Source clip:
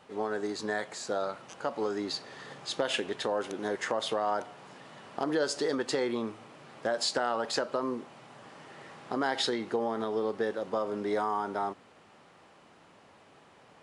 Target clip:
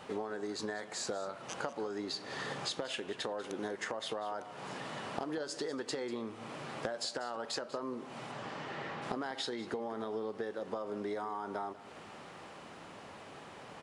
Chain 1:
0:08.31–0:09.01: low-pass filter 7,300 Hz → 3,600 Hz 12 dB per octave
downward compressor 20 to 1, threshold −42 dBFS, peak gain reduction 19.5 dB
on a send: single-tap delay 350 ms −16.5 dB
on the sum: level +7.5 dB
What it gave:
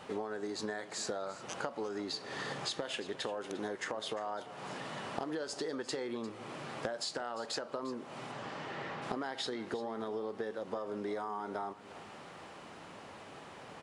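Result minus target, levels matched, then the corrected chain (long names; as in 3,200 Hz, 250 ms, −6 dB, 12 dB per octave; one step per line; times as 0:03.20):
echo 157 ms late
0:08.31–0:09.01: low-pass filter 7,300 Hz → 3,600 Hz 12 dB per octave
downward compressor 20 to 1, threshold −42 dBFS, peak gain reduction 19.5 dB
on a send: single-tap delay 193 ms −16.5 dB
on the sum: level +7.5 dB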